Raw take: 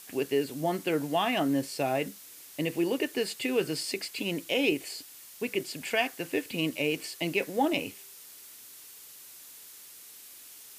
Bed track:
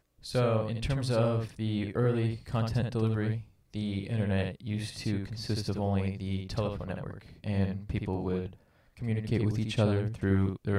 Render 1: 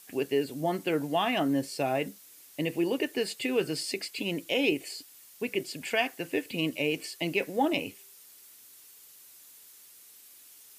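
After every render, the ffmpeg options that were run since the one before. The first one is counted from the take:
-af "afftdn=nr=6:nf=-50"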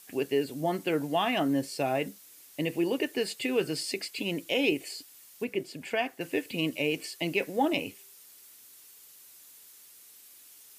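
-filter_complex "[0:a]asettb=1/sr,asplit=3[a][b][c];[a]atrim=end=5.444[d];[b]atrim=start=5.44:end=6.21,asetpts=PTS-STARTPTS,afade=t=in:d=0.004:c=qsin,afade=t=out:st=0.766:d=0.004:c=qsin,highshelf=f=2.2k:g=-8[e];[c]atrim=start=6.206[f];[d][e]acrossfade=d=0.004:c1=hsin:c2=qsin[g];[g][f]acrossfade=d=0.004:c1=qsin:c2=hsin"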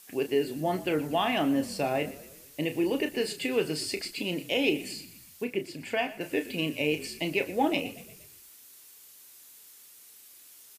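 -filter_complex "[0:a]asplit=2[a][b];[b]adelay=33,volume=-9dB[c];[a][c]amix=inputs=2:normalize=0,asplit=6[d][e][f][g][h][i];[e]adelay=119,afreqshift=-42,volume=-17dB[j];[f]adelay=238,afreqshift=-84,volume=-22.5dB[k];[g]adelay=357,afreqshift=-126,volume=-28dB[l];[h]adelay=476,afreqshift=-168,volume=-33.5dB[m];[i]adelay=595,afreqshift=-210,volume=-39.1dB[n];[d][j][k][l][m][n]amix=inputs=6:normalize=0"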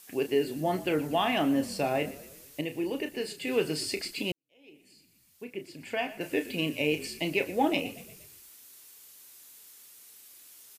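-filter_complex "[0:a]asplit=4[a][b][c][d];[a]atrim=end=2.612[e];[b]atrim=start=2.608:end=3.472,asetpts=PTS-STARTPTS,volume=-4.5dB[f];[c]atrim=start=3.468:end=4.32,asetpts=PTS-STARTPTS,afade=t=out:st=0.848:d=0.004:c=hsin[g];[d]atrim=start=4.32,asetpts=PTS-STARTPTS,afade=t=in:d=1.92:c=qua[h];[e][f]acrossfade=d=0.004:c1=hsin:c2=hsin[i];[g][h]concat=n=2:v=0:a=1[j];[i][j]acrossfade=d=0.004:c1=hsin:c2=hsin"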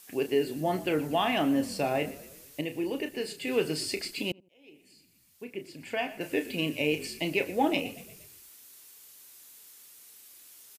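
-filter_complex "[0:a]asplit=2[a][b];[b]adelay=83,lowpass=f=860:p=1,volume=-22dB,asplit=2[c][d];[d]adelay=83,lowpass=f=860:p=1,volume=0.35[e];[a][c][e]amix=inputs=3:normalize=0"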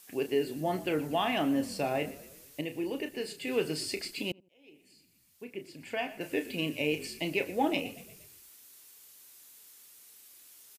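-af "volume=-2.5dB"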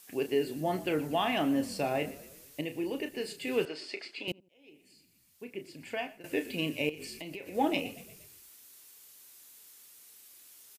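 -filter_complex "[0:a]asettb=1/sr,asplit=3[a][b][c];[a]atrim=end=3.654[d];[b]atrim=start=3.65:end=4.28,asetpts=PTS-STARTPTS,afade=t=in:d=0.004:c=qsin,afade=t=out:st=0.626:d=0.004:c=qsin,highpass=480,lowpass=3.4k[e];[c]atrim=start=4.276[f];[d][e]acrossfade=d=0.004:c1=hsin:c2=qsin[g];[g][f]acrossfade=d=0.004:c1=qsin:c2=hsin,asettb=1/sr,asplit=3[h][i][j];[h]atrim=end=6.894[k];[i]atrim=start=6.89:end=7.55,asetpts=PTS-STARTPTS,afade=t=in:d=0.004:c=qsin,afade=t=out:st=0.656:d=0.004:c=qsin,acompressor=threshold=-38dB:ratio=8:attack=3.2:release=140:knee=1:detection=peak[l];[j]atrim=start=7.546[m];[k][l]acrossfade=d=0.004:c1=hsin:c2=qsin[n];[n][m]acrossfade=d=0.004:c1=qsin:c2=hsin,asplit=2[o][p];[o]atrim=end=6.24,asetpts=PTS-STARTPTS,afade=t=out:st=5.81:d=0.43:c=qsin:silence=0.11885[q];[p]atrim=start=6.24,asetpts=PTS-STARTPTS,afade=t=in:d=0.004:c=hsin:silence=0.11885[r];[q][r]concat=n=2:v=0:a=1"

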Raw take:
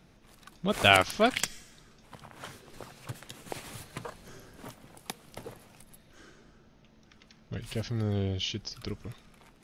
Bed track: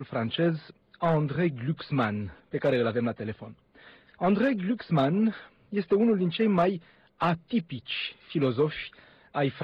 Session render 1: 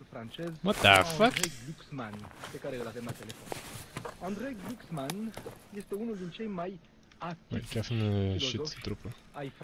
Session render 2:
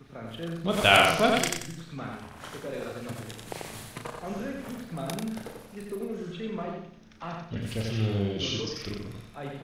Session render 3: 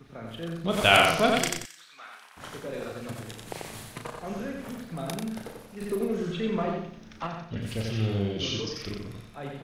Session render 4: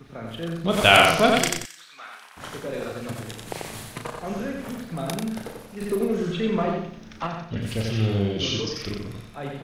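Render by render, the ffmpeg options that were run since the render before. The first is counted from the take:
-filter_complex "[1:a]volume=-13.5dB[a];[0:a][a]amix=inputs=2:normalize=0"
-filter_complex "[0:a]asplit=2[a][b];[b]adelay=36,volume=-6dB[c];[a][c]amix=inputs=2:normalize=0,aecho=1:1:90|180|270|360:0.708|0.241|0.0818|0.0278"
-filter_complex "[0:a]asettb=1/sr,asplit=3[a][b][c];[a]atrim=end=1.654[d];[b]atrim=start=1.65:end=2.37,asetpts=PTS-STARTPTS,afade=t=in:d=0.004:c=qsin,afade=t=out:st=0.716:d=0.004:c=qsin,highpass=1.3k[e];[c]atrim=start=2.366[f];[d][e]acrossfade=d=0.004:c1=hsin:c2=qsin[g];[g][f]acrossfade=d=0.004:c1=qsin:c2=hsin,asettb=1/sr,asplit=3[h][i][j];[h]atrim=end=5.814[k];[i]atrim=start=5.81:end=7.27,asetpts=PTS-STARTPTS,afade=t=in:d=0.004:c=qsin,afade=t=out:st=1.456:d=0.004:c=qsin,acontrast=50[l];[j]atrim=start=7.266[m];[k][l]acrossfade=d=0.004:c1=hsin:c2=qsin[n];[n][m]acrossfade=d=0.004:c1=qsin:c2=hsin"
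-af "volume=4.5dB,alimiter=limit=-1dB:level=0:latency=1"

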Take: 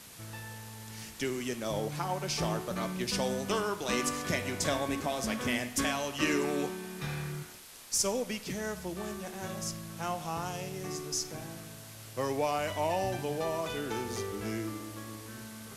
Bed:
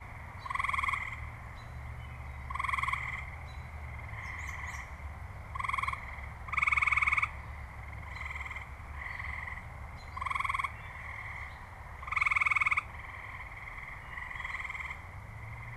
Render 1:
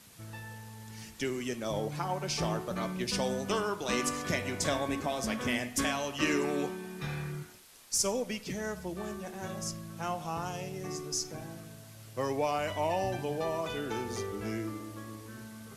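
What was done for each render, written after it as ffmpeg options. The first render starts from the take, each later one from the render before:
-af "afftdn=nr=6:nf=-48"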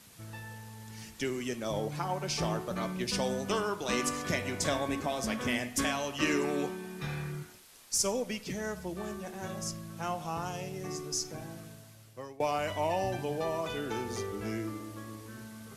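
-filter_complex "[0:a]asplit=2[a][b];[a]atrim=end=12.4,asetpts=PTS-STARTPTS,afade=t=out:st=11.66:d=0.74:silence=0.0794328[c];[b]atrim=start=12.4,asetpts=PTS-STARTPTS,afade=t=in:d=0.004:c=hsin:silence=0.0794328[d];[c][d]concat=n=2:v=0:a=1"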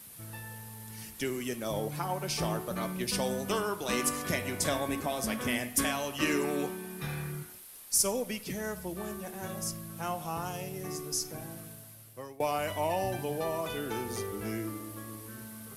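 -af "aexciter=amount=2.4:drive=8.5:freq=9.1k"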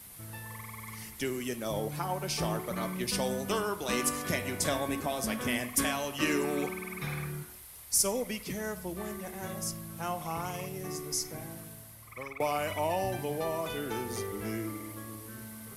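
-filter_complex "[1:a]volume=-16.5dB[a];[0:a][a]amix=inputs=2:normalize=0"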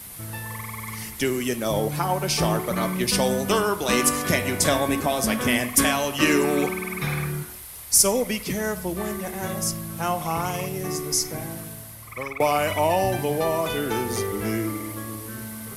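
-af "volume=9.5dB"

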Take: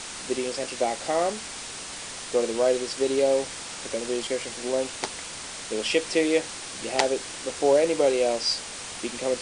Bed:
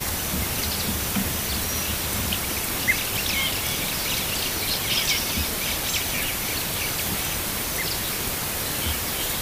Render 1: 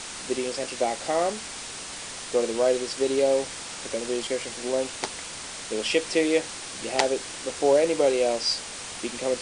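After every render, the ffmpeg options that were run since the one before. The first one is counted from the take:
-af anull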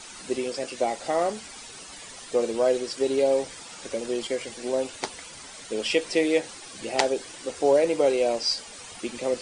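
-af "afftdn=nr=11:nf=-38"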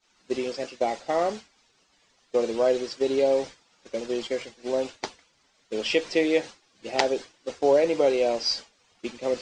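-af "agate=range=-33dB:threshold=-29dB:ratio=3:detection=peak,lowpass=f=6.4k:w=0.5412,lowpass=f=6.4k:w=1.3066"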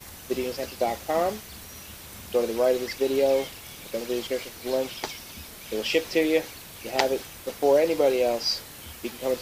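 -filter_complex "[1:a]volume=-16.5dB[a];[0:a][a]amix=inputs=2:normalize=0"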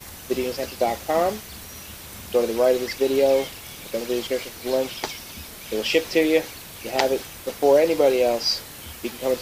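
-af "volume=3.5dB,alimiter=limit=-3dB:level=0:latency=1"

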